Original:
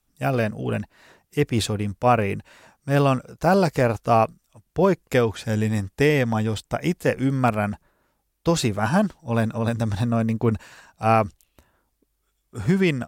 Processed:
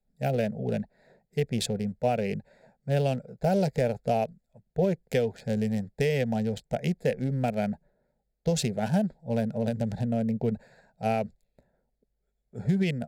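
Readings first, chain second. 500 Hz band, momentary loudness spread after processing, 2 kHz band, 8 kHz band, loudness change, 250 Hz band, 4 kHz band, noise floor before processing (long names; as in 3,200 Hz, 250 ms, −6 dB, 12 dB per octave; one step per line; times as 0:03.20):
−5.5 dB, 8 LU, −10.5 dB, −5.0 dB, −6.5 dB, −5.5 dB, −6.0 dB, −73 dBFS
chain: adaptive Wiener filter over 15 samples
parametric band 1,000 Hz −5 dB 0.42 octaves
downward compressor 4 to 1, threshold −20 dBFS, peak gain reduction 6 dB
phaser with its sweep stopped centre 310 Hz, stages 6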